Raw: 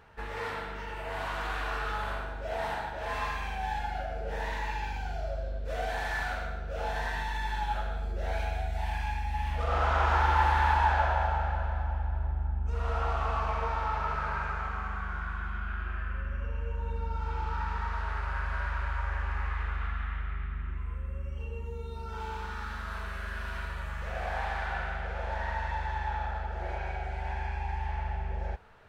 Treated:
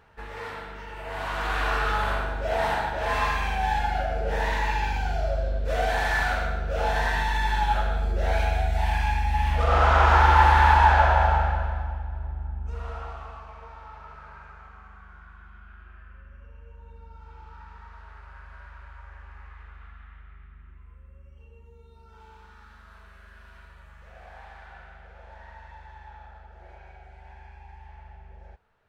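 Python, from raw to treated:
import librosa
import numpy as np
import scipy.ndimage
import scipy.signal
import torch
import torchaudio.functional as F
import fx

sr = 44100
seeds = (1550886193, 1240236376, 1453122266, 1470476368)

y = fx.gain(x, sr, db=fx.line((0.9, -1.0), (1.65, 8.0), (11.35, 8.0), (12.06, -1.5), (12.72, -1.5), (13.46, -13.0)))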